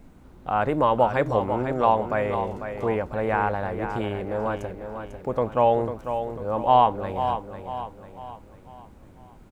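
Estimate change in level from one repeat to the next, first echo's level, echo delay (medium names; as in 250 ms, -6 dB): -7.0 dB, -8.5 dB, 497 ms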